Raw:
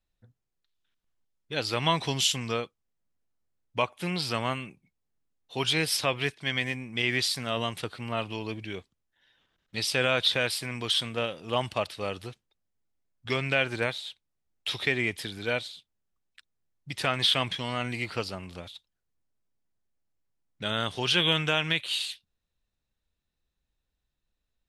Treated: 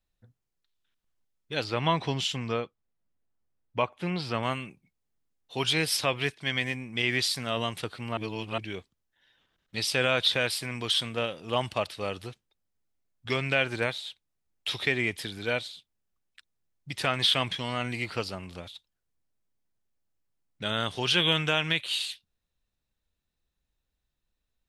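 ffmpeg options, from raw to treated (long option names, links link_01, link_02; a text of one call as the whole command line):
ffmpeg -i in.wav -filter_complex "[0:a]asettb=1/sr,asplit=3[link_01][link_02][link_03];[link_01]atrim=end=1.644[link_04];[link_02]atrim=start=1.64:end=4.43,asetpts=PTS-STARTPTS,afade=type=in:duration=0.004:curve=qsin,afade=type=out:start_time=2.786:duration=0.004:curve=qsin,aemphasis=mode=reproduction:type=75fm[link_05];[link_03]atrim=start=4.426[link_06];[link_04][link_05]acrossfade=duration=0.004:curve1=hsin:curve2=qsin[link_07];[link_07][link_06]acrossfade=duration=0.004:curve1=qsin:curve2=hsin,asplit=3[link_08][link_09][link_10];[link_08]atrim=end=8.172[link_11];[link_09]atrim=start=8.168:end=8.582,asetpts=PTS-STARTPTS,areverse[link_12];[link_10]atrim=start=8.578[link_13];[link_11][link_12]acrossfade=duration=0.004:curve1=hsin:curve2=hsin[link_14];[link_14][link_13]acrossfade=duration=0.004:curve1=hsin:curve2=hsin" out.wav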